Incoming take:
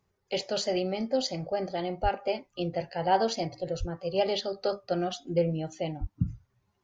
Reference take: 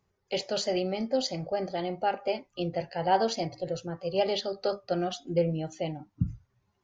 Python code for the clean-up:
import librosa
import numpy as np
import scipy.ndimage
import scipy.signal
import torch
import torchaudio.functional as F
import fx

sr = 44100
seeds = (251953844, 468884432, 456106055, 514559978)

y = fx.highpass(x, sr, hz=140.0, slope=24, at=(2.02, 2.14), fade=0.02)
y = fx.highpass(y, sr, hz=140.0, slope=24, at=(3.79, 3.91), fade=0.02)
y = fx.highpass(y, sr, hz=140.0, slope=24, at=(6.0, 6.12), fade=0.02)